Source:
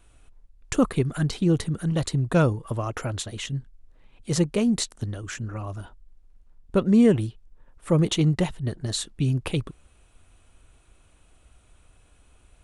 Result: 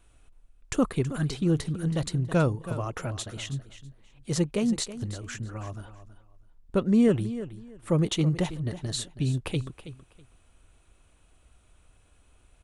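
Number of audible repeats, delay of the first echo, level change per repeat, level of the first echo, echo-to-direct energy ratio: 2, 324 ms, -13.5 dB, -13.5 dB, -13.5 dB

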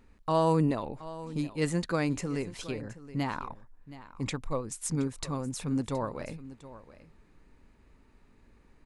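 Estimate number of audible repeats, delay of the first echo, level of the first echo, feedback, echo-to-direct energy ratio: 1, 722 ms, -16.0 dB, no regular repeats, -16.0 dB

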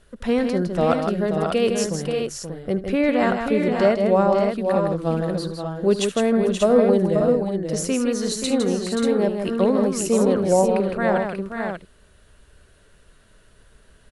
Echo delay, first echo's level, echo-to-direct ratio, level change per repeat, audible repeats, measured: 74 ms, -15.5 dB, -1.5 dB, no regular repeats, 4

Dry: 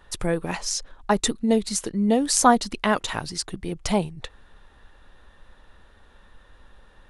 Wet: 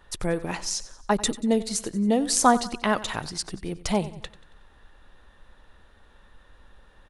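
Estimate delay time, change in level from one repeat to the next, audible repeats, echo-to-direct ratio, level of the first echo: 92 ms, -6.5 dB, 3, -16.0 dB, -17.0 dB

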